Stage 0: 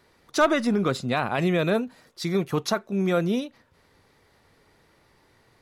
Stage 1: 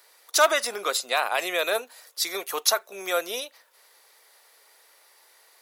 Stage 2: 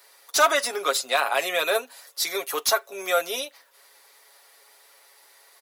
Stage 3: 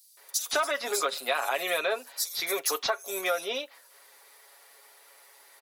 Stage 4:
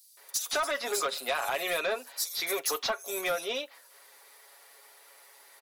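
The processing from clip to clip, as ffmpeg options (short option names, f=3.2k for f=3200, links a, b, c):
-af "highpass=f=510:w=0.5412,highpass=f=510:w=1.3066,aemphasis=mode=production:type=75fm,volume=1.5dB"
-filter_complex "[0:a]aecho=1:1:7.2:0.65,acrossover=split=1300[a][b];[b]asoftclip=type=tanh:threshold=-17dB[c];[a][c]amix=inputs=2:normalize=0,volume=1dB"
-filter_complex "[0:a]acrossover=split=4600[a][b];[a]adelay=170[c];[c][b]amix=inputs=2:normalize=0,acompressor=threshold=-24dB:ratio=6"
-af "asoftclip=type=tanh:threshold=-22dB"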